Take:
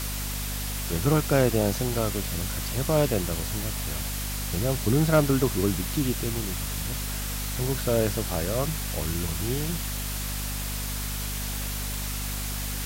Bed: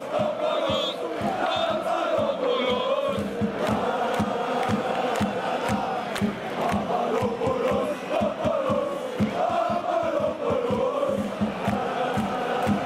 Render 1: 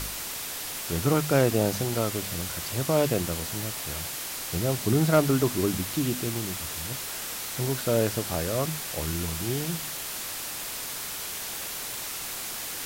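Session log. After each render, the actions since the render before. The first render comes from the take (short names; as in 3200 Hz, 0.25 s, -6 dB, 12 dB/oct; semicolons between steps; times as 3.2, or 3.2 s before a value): de-hum 50 Hz, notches 5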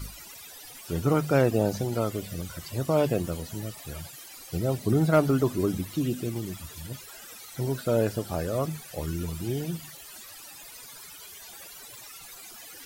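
denoiser 17 dB, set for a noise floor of -35 dBFS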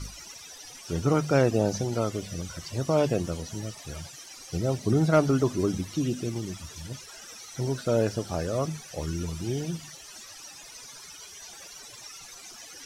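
LPF 8200 Hz 12 dB/oct; bell 5800 Hz +10.5 dB 0.28 oct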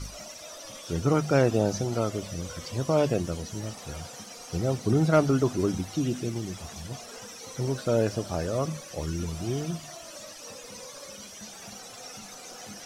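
add bed -22.5 dB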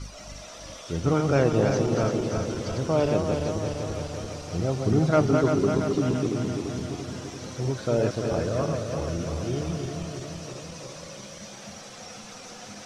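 regenerating reverse delay 0.17 s, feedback 78%, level -4.5 dB; air absorption 59 m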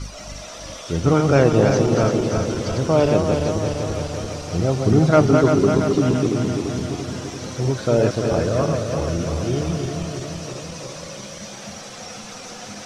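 gain +6.5 dB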